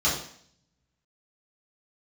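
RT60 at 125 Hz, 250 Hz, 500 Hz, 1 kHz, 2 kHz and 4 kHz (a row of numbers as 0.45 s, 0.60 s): 1.2 s, 0.80 s, 0.60 s, 0.60 s, 0.60 s, 0.65 s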